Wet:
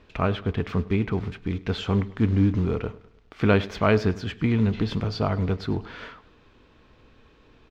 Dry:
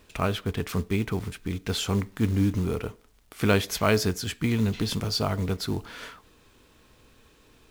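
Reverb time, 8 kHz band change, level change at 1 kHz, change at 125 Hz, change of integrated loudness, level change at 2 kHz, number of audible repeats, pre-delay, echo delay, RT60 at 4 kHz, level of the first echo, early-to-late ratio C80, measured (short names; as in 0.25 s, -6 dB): none, under -15 dB, +2.0 dB, +3.0 dB, +2.0 dB, +0.5 dB, 3, none, 0.103 s, none, -20.0 dB, none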